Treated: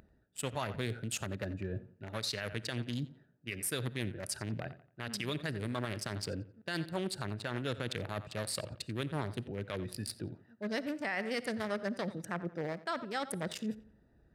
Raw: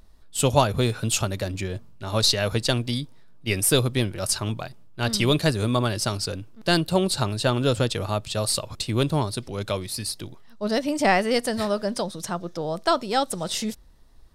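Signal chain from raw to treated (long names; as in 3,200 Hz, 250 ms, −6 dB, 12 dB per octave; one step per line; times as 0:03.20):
adaptive Wiener filter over 41 samples
high-shelf EQ 8,700 Hz +6 dB
reversed playback
downward compressor 5 to 1, threshold −34 dBFS, peak gain reduction 18.5 dB
reversed playback
parametric band 1,800 Hz +11.5 dB 1.1 octaves
feedback echo with a low-pass in the loop 88 ms, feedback 32%, low-pass 3,900 Hz, level −17 dB
brickwall limiter −24.5 dBFS, peak gain reduction 8.5 dB
high-pass filter 100 Hz
on a send at −22.5 dB: convolution reverb, pre-delay 15 ms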